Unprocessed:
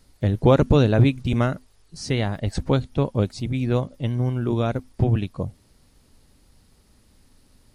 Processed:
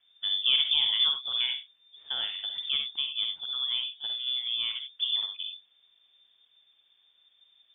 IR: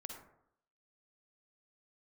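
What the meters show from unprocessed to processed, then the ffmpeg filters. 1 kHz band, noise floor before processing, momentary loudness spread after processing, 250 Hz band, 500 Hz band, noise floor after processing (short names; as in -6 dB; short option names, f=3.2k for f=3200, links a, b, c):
-18.5 dB, -59 dBFS, 11 LU, under -40 dB, under -35 dB, -67 dBFS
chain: -filter_complex "[1:a]atrim=start_sample=2205,atrim=end_sample=4410[a];[0:a][a]afir=irnorm=-1:irlink=0,lowpass=f=3.1k:t=q:w=0.5098,lowpass=f=3.1k:t=q:w=0.6013,lowpass=f=3.1k:t=q:w=0.9,lowpass=f=3.1k:t=q:w=2.563,afreqshift=-3600,volume=-5dB"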